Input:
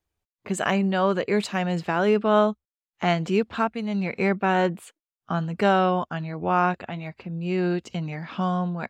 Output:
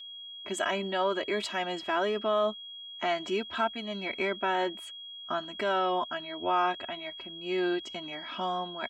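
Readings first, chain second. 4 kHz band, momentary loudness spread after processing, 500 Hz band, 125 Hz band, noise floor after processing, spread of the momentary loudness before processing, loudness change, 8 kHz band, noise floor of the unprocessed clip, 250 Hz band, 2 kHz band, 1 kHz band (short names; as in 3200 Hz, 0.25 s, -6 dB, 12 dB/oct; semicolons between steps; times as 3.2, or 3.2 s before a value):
+3.0 dB, 11 LU, -6.0 dB, -20.0 dB, -45 dBFS, 11 LU, -6.5 dB, n/a, under -85 dBFS, -11.5 dB, -4.5 dB, -5.0 dB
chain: high shelf 8400 Hz -7.5 dB; limiter -14.5 dBFS, peak gain reduction 7 dB; low shelf 310 Hz -10 dB; whine 3300 Hz -42 dBFS; comb 3.1 ms, depth 85%; gain -3.5 dB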